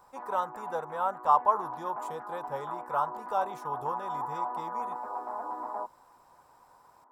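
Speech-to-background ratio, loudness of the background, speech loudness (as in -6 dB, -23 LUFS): 5.5 dB, -37.5 LUFS, -32.0 LUFS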